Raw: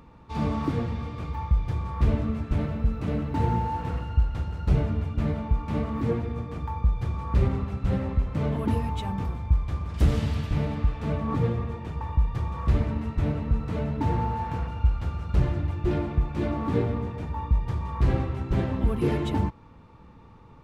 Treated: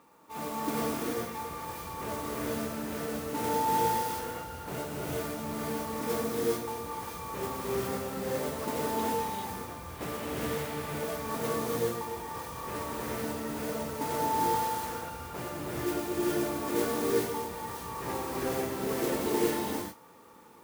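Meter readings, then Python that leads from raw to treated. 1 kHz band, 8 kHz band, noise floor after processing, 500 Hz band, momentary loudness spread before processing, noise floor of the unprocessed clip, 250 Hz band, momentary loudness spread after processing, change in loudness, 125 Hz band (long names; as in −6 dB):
+2.0 dB, can't be measured, −44 dBFS, +1.5 dB, 6 LU, −49 dBFS, −5.0 dB, 10 LU, −5.0 dB, −17.0 dB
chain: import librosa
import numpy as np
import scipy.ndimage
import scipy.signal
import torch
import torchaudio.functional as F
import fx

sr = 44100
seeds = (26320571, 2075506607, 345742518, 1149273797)

y = fx.bandpass_edges(x, sr, low_hz=360.0, high_hz=2700.0)
y = fx.mod_noise(y, sr, seeds[0], snr_db=10)
y = fx.rev_gated(y, sr, seeds[1], gate_ms=450, shape='rising', drr_db=-5.0)
y = F.gain(torch.from_numpy(y), -4.0).numpy()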